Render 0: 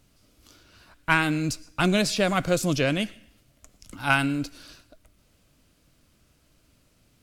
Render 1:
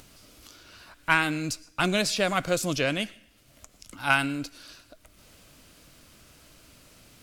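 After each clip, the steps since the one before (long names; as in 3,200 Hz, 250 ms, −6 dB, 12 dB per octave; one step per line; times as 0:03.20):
low-shelf EQ 360 Hz −7 dB
upward compression, threshold −42 dBFS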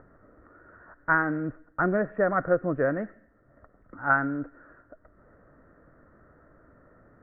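Chebyshev low-pass with heavy ripple 1,900 Hz, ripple 6 dB
level +4 dB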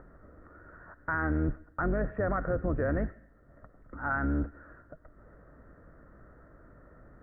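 sub-octave generator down 2 octaves, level +3 dB
brickwall limiter −21 dBFS, peak gain reduction 11.5 dB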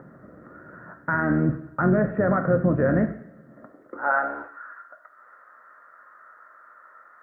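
coupled-rooms reverb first 0.53 s, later 1.6 s, from −18 dB, DRR 6 dB
high-pass filter sweep 160 Hz → 1,200 Hz, 0:03.40–0:04.60
level +6 dB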